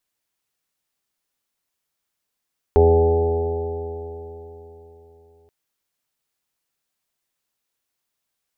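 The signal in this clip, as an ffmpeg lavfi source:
ffmpeg -f lavfi -i "aevalsrc='0.188*pow(10,-3*t/3.75)*sin(2*PI*82.13*t)+0.0251*pow(10,-3*t/3.75)*sin(2*PI*164.45*t)+0.0422*pow(10,-3*t/3.75)*sin(2*PI*247.15*t)+0.0299*pow(10,-3*t/3.75)*sin(2*PI*330.42*t)+0.282*pow(10,-3*t/3.75)*sin(2*PI*414.43*t)+0.0531*pow(10,-3*t/3.75)*sin(2*PI*499.38*t)+0.0422*pow(10,-3*t/3.75)*sin(2*PI*585.44*t)+0.0211*pow(10,-3*t/3.75)*sin(2*PI*672.79*t)+0.0668*pow(10,-3*t/3.75)*sin(2*PI*761.59*t)+0.0447*pow(10,-3*t/3.75)*sin(2*PI*852.02*t)':duration=2.73:sample_rate=44100" out.wav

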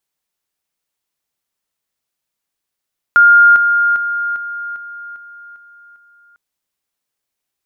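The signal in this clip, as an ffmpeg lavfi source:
ffmpeg -f lavfi -i "aevalsrc='pow(10,(-4-6*floor(t/0.4))/20)*sin(2*PI*1410*t)':duration=3.2:sample_rate=44100" out.wav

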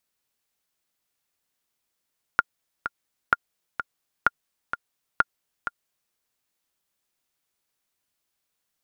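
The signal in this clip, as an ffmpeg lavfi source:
ffmpeg -f lavfi -i "aevalsrc='pow(10,(-4-10*gte(mod(t,2*60/128),60/128))/20)*sin(2*PI*1410*mod(t,60/128))*exp(-6.91*mod(t,60/128)/0.03)':duration=3.75:sample_rate=44100" out.wav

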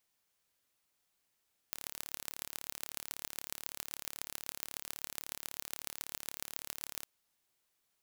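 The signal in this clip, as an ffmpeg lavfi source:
ffmpeg -f lavfi -i "aevalsrc='0.316*eq(mod(n,1218),0)*(0.5+0.5*eq(mod(n,6090),0))':duration=5.31:sample_rate=44100" out.wav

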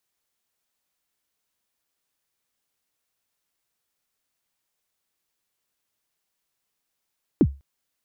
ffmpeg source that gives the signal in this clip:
ffmpeg -f lavfi -i "aevalsrc='0.355*pow(10,-3*t/0.27)*sin(2*PI*(380*0.056/log(69/380)*(exp(log(69/380)*min(t,0.056)/0.056)-1)+69*max(t-0.056,0)))':duration=0.2:sample_rate=44100" out.wav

